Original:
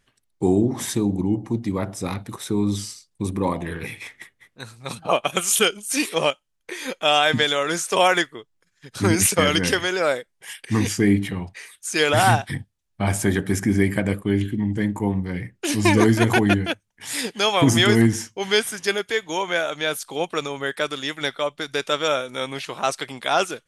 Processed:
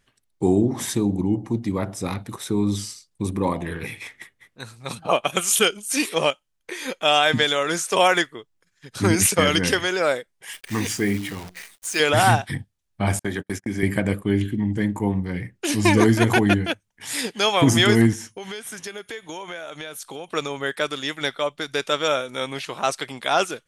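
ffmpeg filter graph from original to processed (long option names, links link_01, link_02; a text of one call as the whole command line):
ffmpeg -i in.wav -filter_complex "[0:a]asettb=1/sr,asplit=3[link_01][link_02][link_03];[link_01]atrim=end=10.534[link_04];[link_02]atrim=start=10.53:end=12,asetpts=PTS-STARTPTS,afade=type=in:duration=0.004:curve=qsin,afade=type=out:start_time=1.466:duration=0.004:curve=qsin,bandreject=frequency=60:width_type=h:width=6,bandreject=frequency=120:width_type=h:width=6,bandreject=frequency=180:width_type=h:width=6,bandreject=frequency=240:width_type=h:width=6,bandreject=frequency=300:width_type=h:width=6,acrusher=bits=7:dc=4:mix=0:aa=0.000001,lowshelf=frequency=360:gain=-6.5[link_05];[link_03]atrim=start=11.996[link_06];[link_04][link_05]acrossfade=duration=0.004:curve1=hsin:curve2=qsin[link_07];[link_07][link_06]acrossfade=duration=0.004:curve1=qsin:curve2=hsin,asettb=1/sr,asplit=3[link_08][link_09][link_10];[link_08]atrim=end=13.194[link_11];[link_09]atrim=start=13.19:end=13.83,asetpts=PTS-STARTPTS,afade=type=in:duration=0.004:curve=qsin,afade=type=out:start_time=0.636:duration=0.004:curve=qsin,acrossover=split=110|1800|6100[link_12][link_13][link_14][link_15];[link_12]acompressor=threshold=-30dB:ratio=3[link_16];[link_13]acompressor=threshold=-22dB:ratio=3[link_17];[link_14]acompressor=threshold=-35dB:ratio=3[link_18];[link_15]acompressor=threshold=-43dB:ratio=3[link_19];[link_16][link_17][link_18][link_19]amix=inputs=4:normalize=0,agate=range=-44dB:threshold=-27dB:ratio=16:release=100:detection=peak,lowshelf=frequency=230:gain=-7.5[link_20];[link_10]atrim=start=13.826[link_21];[link_11][link_20]acrossfade=duration=0.004:curve1=hsin:curve2=qsin[link_22];[link_22][link_21]acrossfade=duration=0.004:curve1=qsin:curve2=hsin,asettb=1/sr,asplit=3[link_23][link_24][link_25];[link_23]atrim=end=18.134[link_26];[link_24]atrim=start=18.13:end=20.28,asetpts=PTS-STARTPTS,afade=type=in:duration=0.004:curve=qsin,afade=type=out:start_time=2.146:duration=0.004:curve=qsin,bandreject=frequency=4800:width=13,acompressor=threshold=-30dB:ratio=8:attack=3.2:release=140:knee=1:detection=peak,aeval=exprs='val(0)+0.000501*sin(2*PI*9700*n/s)':channel_layout=same[link_27];[link_25]atrim=start=20.276[link_28];[link_26][link_27]acrossfade=duration=0.004:curve1=hsin:curve2=qsin[link_29];[link_29][link_28]acrossfade=duration=0.004:curve1=qsin:curve2=hsin" out.wav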